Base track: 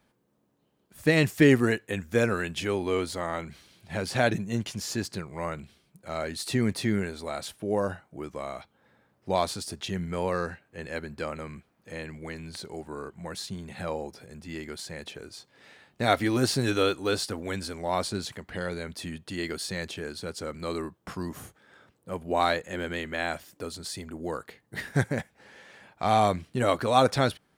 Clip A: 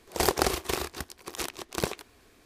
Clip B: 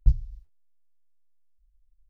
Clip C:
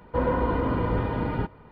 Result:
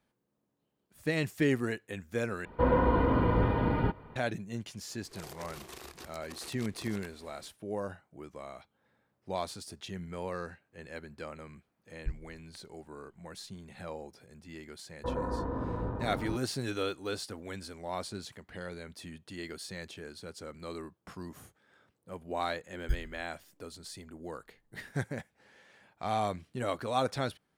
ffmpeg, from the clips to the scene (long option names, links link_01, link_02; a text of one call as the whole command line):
ffmpeg -i bed.wav -i cue0.wav -i cue1.wav -i cue2.wav -filter_complex "[3:a]asplit=2[link_01][link_02];[2:a]asplit=2[link_03][link_04];[0:a]volume=-9dB[link_05];[1:a]acompressor=threshold=-40dB:ratio=12:attack=2.6:release=38:knee=1:detection=rms[link_06];[link_02]afwtdn=0.0355[link_07];[link_04]acrusher=samples=27:mix=1:aa=0.000001[link_08];[link_05]asplit=2[link_09][link_10];[link_09]atrim=end=2.454[link_11];[link_01]atrim=end=1.71,asetpts=PTS-STARTPTS,volume=-1dB[link_12];[link_10]atrim=start=4.156[link_13];[link_06]atrim=end=2.45,asetpts=PTS-STARTPTS,volume=-2.5dB,afade=type=in:duration=0.004:curve=hsin,afade=type=out:start_time=2.446:duration=0.004:curve=hsin,adelay=5040[link_14];[link_03]atrim=end=2.09,asetpts=PTS-STARTPTS,volume=-16dB,afade=type=in:duration=0.004:curve=hsin,afade=type=out:start_time=2.086:duration=0.004:curve=hsin,adelay=12000[link_15];[link_07]atrim=end=1.71,asetpts=PTS-STARTPTS,volume=-9.5dB,afade=type=in:duration=0.004:curve=hsin,afade=type=out:start_time=1.706:duration=0.004:curve=hsin,adelay=14900[link_16];[link_08]atrim=end=2.09,asetpts=PTS-STARTPTS,volume=-11.5dB,afade=type=in:duration=0.004:curve=hsin,afade=type=out:start_time=2.086:duration=0.004:curve=hsin,adelay=22830[link_17];[link_11][link_12]acrossfade=duration=0.004:curve1=hsin:curve2=hsin[link_18];[link_18][link_13]acrossfade=duration=0.004:curve1=hsin:curve2=hsin[link_19];[link_19][link_14][link_15][link_16][link_17]amix=inputs=5:normalize=0" out.wav